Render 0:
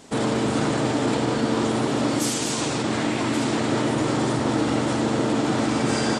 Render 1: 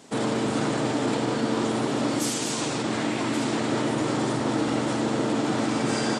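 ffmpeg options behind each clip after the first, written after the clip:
-af "highpass=110,volume=-2.5dB"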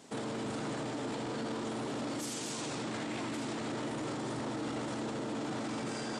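-af "alimiter=level_in=0.5dB:limit=-24dB:level=0:latency=1:release=10,volume=-0.5dB,volume=-5.5dB"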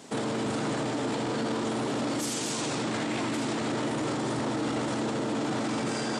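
-af "highpass=60,volume=7.5dB"

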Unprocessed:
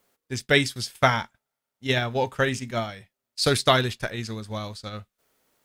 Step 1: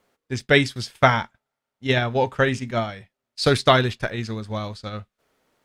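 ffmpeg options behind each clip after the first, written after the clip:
-af "aemphasis=mode=reproduction:type=50kf,volume=4dB"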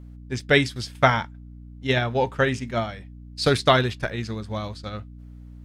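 -af "aeval=exprs='val(0)+0.0112*(sin(2*PI*60*n/s)+sin(2*PI*2*60*n/s)/2+sin(2*PI*3*60*n/s)/3+sin(2*PI*4*60*n/s)/4+sin(2*PI*5*60*n/s)/5)':c=same,volume=-1.5dB"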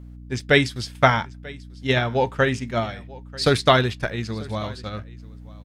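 -af "aecho=1:1:939:0.0841,volume=1.5dB"

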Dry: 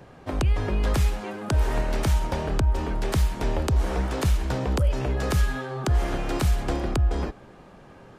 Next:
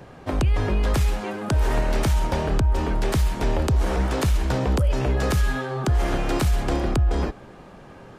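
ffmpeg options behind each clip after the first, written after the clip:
-af "alimiter=limit=-17.5dB:level=0:latency=1:release=13,volume=4dB"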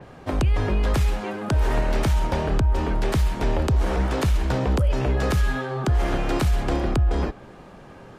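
-af "adynamicequalizer=threshold=0.00398:dfrequency=4800:dqfactor=0.7:tfrequency=4800:tqfactor=0.7:attack=5:release=100:ratio=0.375:range=2:mode=cutabove:tftype=highshelf"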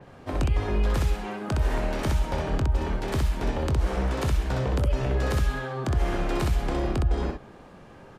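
-af "aecho=1:1:22|63:0.266|0.708,volume=-5.5dB"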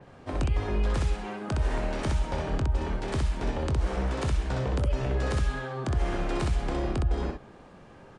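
-af "aresample=22050,aresample=44100,volume=-2.5dB"

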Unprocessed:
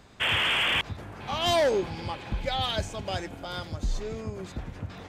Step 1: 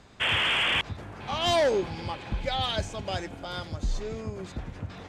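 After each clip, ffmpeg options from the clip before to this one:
-af "lowpass=10k"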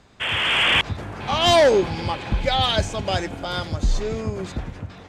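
-af "dynaudnorm=f=150:g=7:m=8.5dB"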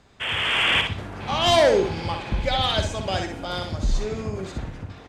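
-af "aecho=1:1:62|124|186|248:0.501|0.155|0.0482|0.0149,volume=-3dB"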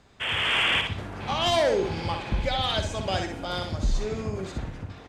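-af "alimiter=limit=-14dB:level=0:latency=1:release=185,volume=-1.5dB"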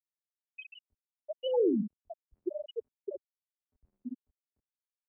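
-af "afftfilt=real='re*gte(hypot(re,im),0.398)':imag='im*gte(hypot(re,im),0.398)':win_size=1024:overlap=0.75,highpass=f=350:t=q:w=0.5412,highpass=f=350:t=q:w=1.307,lowpass=f=2.8k:t=q:w=0.5176,lowpass=f=2.8k:t=q:w=0.7071,lowpass=f=2.8k:t=q:w=1.932,afreqshift=-180,volume=-2.5dB"

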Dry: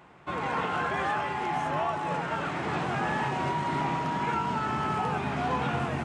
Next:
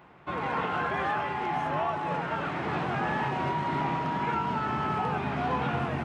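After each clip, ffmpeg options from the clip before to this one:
-af "equalizer=f=7.9k:t=o:w=1.1:g=-10.5"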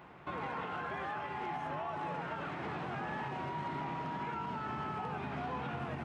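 -af "alimiter=level_in=6.5dB:limit=-24dB:level=0:latency=1:release=419,volume=-6.5dB"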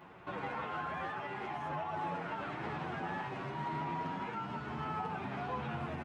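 -filter_complex "[0:a]asplit=2[a][b];[b]adelay=8.8,afreqshift=1[c];[a][c]amix=inputs=2:normalize=1,volume=3dB"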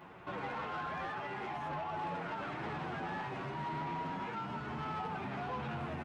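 -af "asoftclip=type=tanh:threshold=-34.5dB,volume=1.5dB"

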